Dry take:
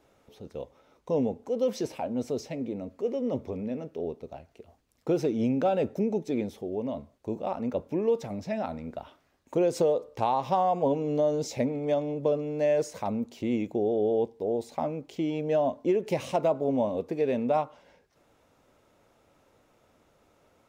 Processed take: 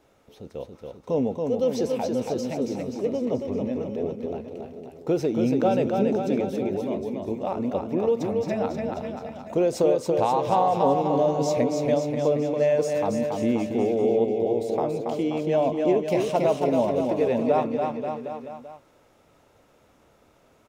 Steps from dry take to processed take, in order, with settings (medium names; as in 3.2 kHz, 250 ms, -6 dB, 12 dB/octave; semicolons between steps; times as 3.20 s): bouncing-ball echo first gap 280 ms, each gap 0.9×, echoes 5; trim +2.5 dB